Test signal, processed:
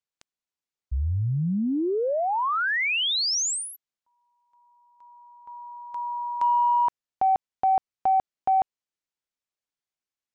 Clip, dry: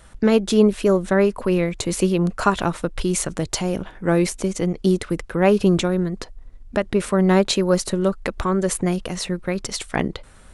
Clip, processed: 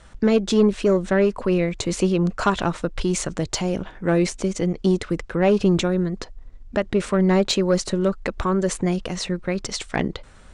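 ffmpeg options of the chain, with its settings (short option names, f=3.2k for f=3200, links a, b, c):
-af "lowpass=f=7.9k:w=0.5412,lowpass=f=7.9k:w=1.3066,asoftclip=type=tanh:threshold=-8dB"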